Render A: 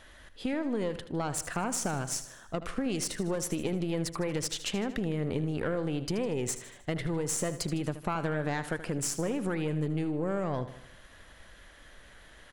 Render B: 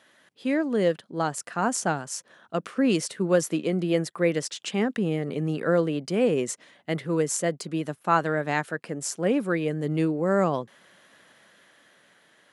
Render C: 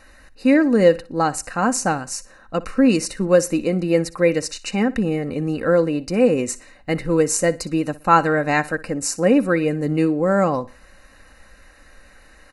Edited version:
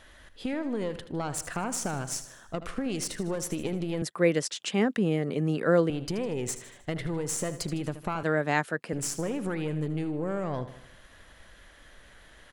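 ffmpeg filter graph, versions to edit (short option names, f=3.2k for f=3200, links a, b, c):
-filter_complex "[1:a]asplit=2[a][b];[0:a]asplit=3[c][d][e];[c]atrim=end=4.022[f];[a]atrim=start=4.018:end=5.902[g];[d]atrim=start=5.898:end=8.232[h];[b]atrim=start=8.228:end=8.932[i];[e]atrim=start=8.928[j];[f][g]acrossfade=d=0.004:c1=hsin:c2=hsin[k];[k][h]acrossfade=d=0.004:c1=hsin:c2=hsin[l];[l][i]acrossfade=d=0.004:c1=hsin:c2=hsin[m];[m][j]acrossfade=d=0.004:c1=hsin:c2=hsin"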